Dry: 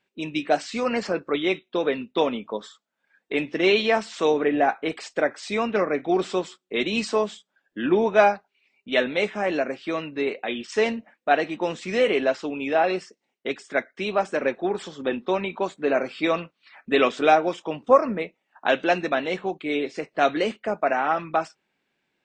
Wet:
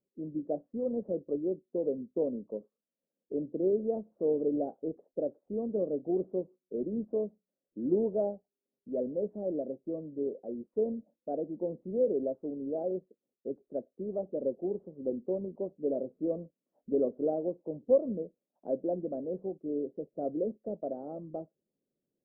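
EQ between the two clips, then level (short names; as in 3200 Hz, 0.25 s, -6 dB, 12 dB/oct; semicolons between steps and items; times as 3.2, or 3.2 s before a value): Chebyshev low-pass 560 Hz, order 4; -6.5 dB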